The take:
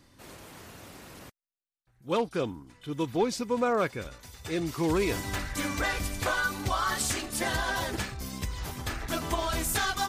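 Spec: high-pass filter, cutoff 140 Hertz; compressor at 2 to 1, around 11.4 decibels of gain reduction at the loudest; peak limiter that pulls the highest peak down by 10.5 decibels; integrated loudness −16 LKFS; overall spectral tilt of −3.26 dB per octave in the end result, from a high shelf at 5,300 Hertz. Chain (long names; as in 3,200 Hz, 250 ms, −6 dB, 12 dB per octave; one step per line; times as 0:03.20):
high-pass filter 140 Hz
high-shelf EQ 5,300 Hz +6 dB
downward compressor 2 to 1, threshold −44 dBFS
level +27 dB
brickwall limiter −6.5 dBFS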